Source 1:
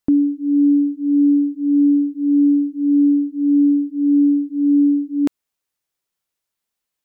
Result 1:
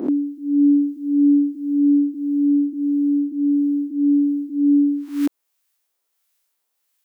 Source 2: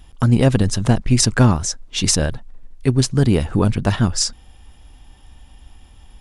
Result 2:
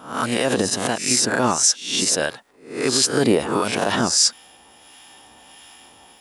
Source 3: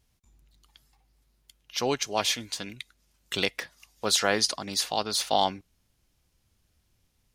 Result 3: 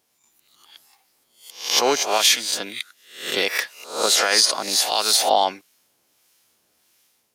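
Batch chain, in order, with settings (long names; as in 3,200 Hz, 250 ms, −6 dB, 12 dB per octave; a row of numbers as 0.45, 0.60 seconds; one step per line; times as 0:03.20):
peak hold with a rise ahead of every peak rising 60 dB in 0.46 s
high-pass filter 390 Hz 12 dB per octave
high-shelf EQ 10,000 Hz +7 dB
automatic gain control gain up to 3.5 dB
brickwall limiter −11.5 dBFS
two-band tremolo in antiphase 1.5 Hz, depth 50%, crossover 1,100 Hz
loudness normalisation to −19 LKFS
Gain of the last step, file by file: +3.0, +6.5, +7.5 decibels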